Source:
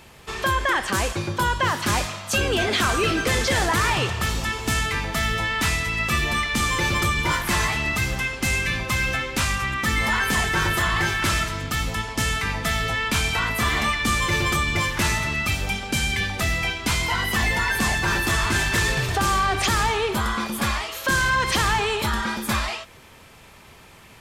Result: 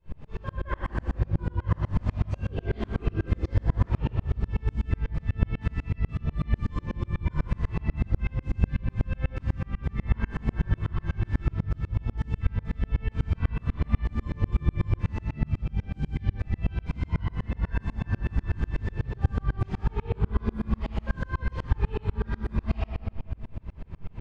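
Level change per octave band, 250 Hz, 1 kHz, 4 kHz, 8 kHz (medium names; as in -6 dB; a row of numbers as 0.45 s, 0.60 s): -5.0 dB, -18.0 dB, -27.0 dB, under -35 dB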